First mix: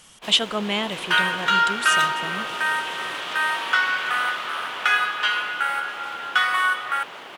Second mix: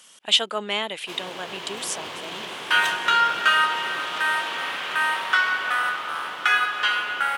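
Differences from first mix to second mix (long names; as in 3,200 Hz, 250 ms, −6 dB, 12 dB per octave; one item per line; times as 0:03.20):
speech: add high-pass filter 360 Hz 12 dB per octave
first sound: entry +0.85 s
second sound: entry +1.60 s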